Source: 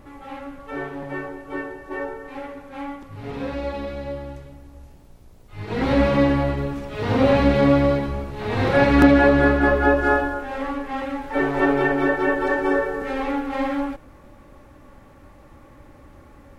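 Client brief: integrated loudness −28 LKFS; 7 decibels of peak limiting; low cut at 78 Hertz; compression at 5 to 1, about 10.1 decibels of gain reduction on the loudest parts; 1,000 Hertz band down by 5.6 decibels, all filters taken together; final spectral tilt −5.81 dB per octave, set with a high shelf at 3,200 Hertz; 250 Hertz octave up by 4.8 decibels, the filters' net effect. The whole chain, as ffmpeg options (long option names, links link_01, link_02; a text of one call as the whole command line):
ffmpeg -i in.wav -af "highpass=78,equalizer=frequency=250:width_type=o:gain=6,equalizer=frequency=1000:width_type=o:gain=-8.5,highshelf=frequency=3200:gain=4.5,acompressor=threshold=-16dB:ratio=5,volume=-2.5dB,alimiter=limit=-18dB:level=0:latency=1" out.wav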